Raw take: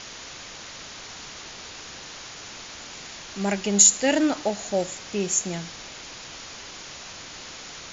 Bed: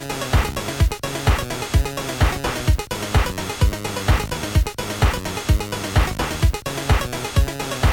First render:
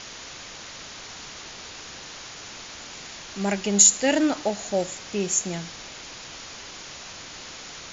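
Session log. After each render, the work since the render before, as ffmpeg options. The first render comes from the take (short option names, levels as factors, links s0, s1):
-af anull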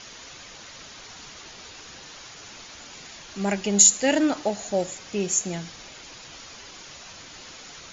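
-af "afftdn=nr=6:nf=-41"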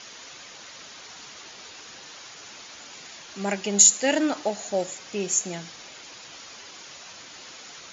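-af "highpass=f=150:p=1,lowshelf=f=250:g=-4"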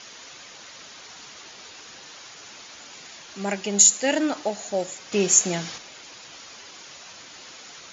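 -filter_complex "[0:a]asplit=3[s0][s1][s2];[s0]atrim=end=5.122[s3];[s1]atrim=start=5.118:end=5.782,asetpts=PTS-STARTPTS,volume=2.24[s4];[s2]atrim=start=5.778[s5];[s3][s4]acrossfade=d=0.004:c1=hsin:c2=hsin[s6];[s6][s5]acrossfade=d=0.004:c1=hsin:c2=hsin"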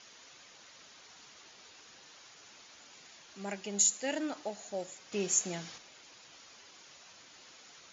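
-af "volume=0.251"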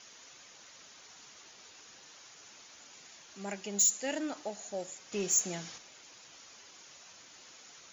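-af "asoftclip=type=tanh:threshold=0.0794,aexciter=amount=1.1:drive=5.2:freq=5800"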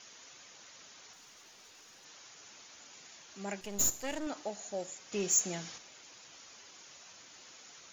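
-filter_complex "[0:a]asettb=1/sr,asplit=3[s0][s1][s2];[s0]atrim=end=1.134[s3];[s1]atrim=start=1.13:end=2.05,asetpts=PTS-STARTPTS,afade=t=in:d=0.004:c=qsin,afade=t=out:st=0.916:d=0.004:c=qsin,aeval=exprs='(tanh(355*val(0)+0.1)-tanh(0.1))/355':c=same[s4];[s2]atrim=start=2.046[s5];[s3][s4]acrossfade=d=0.004:c1=hsin:c2=qsin[s6];[s6][s5]acrossfade=d=0.004:c1=qsin:c2=hsin,asettb=1/sr,asplit=3[s7][s8][s9];[s7]atrim=end=3.614[s10];[s8]atrim=start=3.61:end=4.27,asetpts=PTS-STARTPTS,afade=t=in:d=0.004:c=qsin,afade=t=out:st=0.656:d=0.004:c=qsin,aeval=exprs='if(lt(val(0),0),0.251*val(0),val(0))':c=same[s11];[s9]atrim=start=4.266[s12];[s10][s11]acrossfade=d=0.004:c1=hsin:c2=qsin[s13];[s13][s12]acrossfade=d=0.004:c1=qsin:c2=hsin"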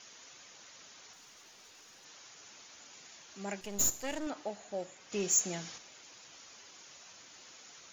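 -filter_complex "[0:a]asettb=1/sr,asplit=3[s0][s1][s2];[s0]atrim=end=4.304[s3];[s1]atrim=start=4.3:end=5.1,asetpts=PTS-STARTPTS,afade=t=in:d=0.004:c=qsin,afade=t=out:st=0.796:d=0.004:c=qsin,acrossover=split=3700[s4][s5];[s5]acompressor=threshold=0.00126:ratio=4:attack=1:release=60[s6];[s4][s6]amix=inputs=2:normalize=0[s7];[s2]atrim=start=5.096[s8];[s3][s7]acrossfade=d=0.004:c1=hsin:c2=qsin[s9];[s9][s8]acrossfade=d=0.004:c1=qsin:c2=hsin"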